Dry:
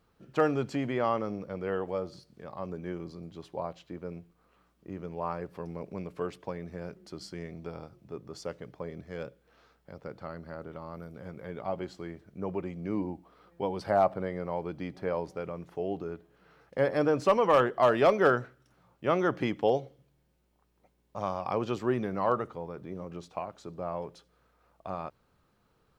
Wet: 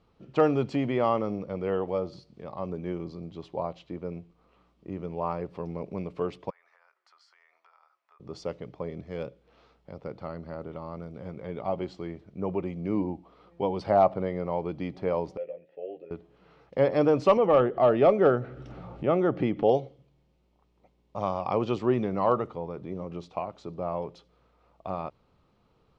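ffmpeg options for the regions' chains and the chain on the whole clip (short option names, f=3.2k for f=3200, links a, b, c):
-filter_complex "[0:a]asettb=1/sr,asplit=3[a][b][c];[a]atrim=end=6.504[d];[b]atrim=start=6.5:end=8.2,asetpts=PTS-STARTPTS,afade=t=in:d=0.004:c=qsin,afade=t=out:st=1.696:d=0.004:c=qsin,highpass=f=1.1k:w=0.5412,highpass=f=1.1k:w=1.3066,highshelf=f=2.2k:t=q:w=1.5:g=-9,acompressor=threshold=-58dB:ratio=5:attack=3.2:release=140:knee=1:detection=peak[e];[c]atrim=start=8.196[f];[d][e]acrossfade=d=0.004:c1=hsin:c2=qsin[g];[g][f]acrossfade=d=0.004:c1=qsin:c2=hsin,asettb=1/sr,asplit=3[h][i][j];[h]atrim=end=15.374[k];[i]atrim=start=15.37:end=16.11,asetpts=PTS-STARTPTS,afade=t=in:d=0.004:c=qsin,afade=t=out:st=0.736:d=0.004:c=qsin,asplit=3[l][m][n];[l]bandpass=f=530:t=q:w=8,volume=0dB[o];[m]bandpass=f=1.84k:t=q:w=8,volume=-6dB[p];[n]bandpass=f=2.48k:t=q:w=8,volume=-9dB[q];[o][p][q]amix=inputs=3:normalize=0,asplit=2[r][s];[s]adelay=13,volume=-3.5dB[t];[r][t]amix=inputs=2:normalize=0,atrim=end_sample=32634[u];[j]atrim=start=16.106[v];[k][u]acrossfade=d=0.004:c1=hsin:c2=qsin[w];[w][v]acrossfade=d=0.004:c1=qsin:c2=hsin,asettb=1/sr,asplit=3[x][y][z];[x]atrim=end=17.374[aa];[y]atrim=start=17.37:end=19.69,asetpts=PTS-STARTPTS,afade=t=in:d=0.004:c=qsin,afade=t=out:st=2.316:d=0.004:c=qsin,bandreject=f=1k:w=5.3,acompressor=mode=upward:threshold=-27dB:ratio=2.5:attack=3.2:release=140:knee=2.83:detection=peak,lowpass=f=1.4k:p=1[ab];[z]atrim=start=19.686[ac];[aa][ab]acrossfade=d=0.004:c1=hsin:c2=qsin[ad];[ad][ac]acrossfade=d=0.004:c1=qsin:c2=hsin,lowpass=4.3k,equalizer=f=1.6k:t=o:w=0.48:g=-9,volume=4dB"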